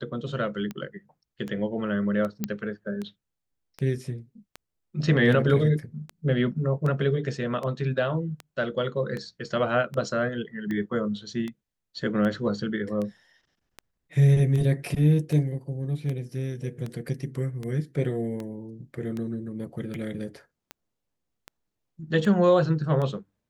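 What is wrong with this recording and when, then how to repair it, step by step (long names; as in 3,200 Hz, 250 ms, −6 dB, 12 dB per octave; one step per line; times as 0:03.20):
scratch tick 78 rpm −21 dBFS
0:02.44: click −13 dBFS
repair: click removal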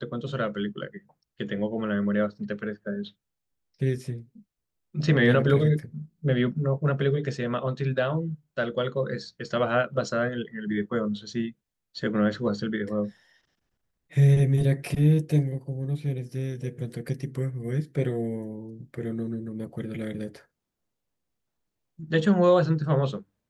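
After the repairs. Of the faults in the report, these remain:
none of them is left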